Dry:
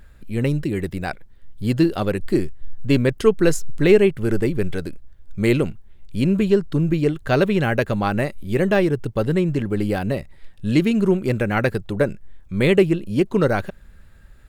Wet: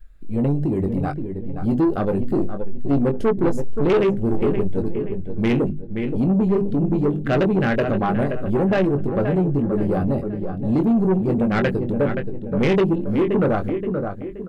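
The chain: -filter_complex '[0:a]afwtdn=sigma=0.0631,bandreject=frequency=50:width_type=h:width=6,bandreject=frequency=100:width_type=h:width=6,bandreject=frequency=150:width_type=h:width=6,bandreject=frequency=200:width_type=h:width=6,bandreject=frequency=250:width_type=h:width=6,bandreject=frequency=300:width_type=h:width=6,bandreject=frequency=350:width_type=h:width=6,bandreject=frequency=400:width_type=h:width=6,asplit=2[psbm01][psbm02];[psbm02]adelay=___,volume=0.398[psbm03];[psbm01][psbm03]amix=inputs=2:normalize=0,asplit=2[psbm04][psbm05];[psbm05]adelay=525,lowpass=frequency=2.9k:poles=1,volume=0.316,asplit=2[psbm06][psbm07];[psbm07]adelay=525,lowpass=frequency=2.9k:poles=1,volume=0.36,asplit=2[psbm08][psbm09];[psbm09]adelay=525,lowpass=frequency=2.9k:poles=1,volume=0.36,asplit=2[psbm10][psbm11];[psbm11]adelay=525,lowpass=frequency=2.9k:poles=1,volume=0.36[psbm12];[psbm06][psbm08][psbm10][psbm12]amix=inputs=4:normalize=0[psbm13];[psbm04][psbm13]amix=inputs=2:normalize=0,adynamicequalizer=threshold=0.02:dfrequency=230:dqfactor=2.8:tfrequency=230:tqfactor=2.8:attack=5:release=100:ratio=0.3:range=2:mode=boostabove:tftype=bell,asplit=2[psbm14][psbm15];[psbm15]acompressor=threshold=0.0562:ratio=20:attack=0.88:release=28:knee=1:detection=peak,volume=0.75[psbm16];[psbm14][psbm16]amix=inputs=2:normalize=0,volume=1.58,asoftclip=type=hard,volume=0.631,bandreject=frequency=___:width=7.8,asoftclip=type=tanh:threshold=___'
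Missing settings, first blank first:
21, 920, 0.224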